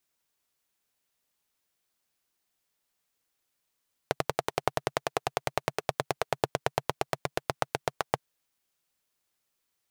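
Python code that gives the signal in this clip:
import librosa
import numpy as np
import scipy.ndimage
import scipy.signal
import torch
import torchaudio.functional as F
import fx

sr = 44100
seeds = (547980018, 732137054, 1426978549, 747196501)

y = fx.engine_single_rev(sr, seeds[0], length_s=4.07, rpm=1300, resonances_hz=(140.0, 450.0, 660.0), end_rpm=900)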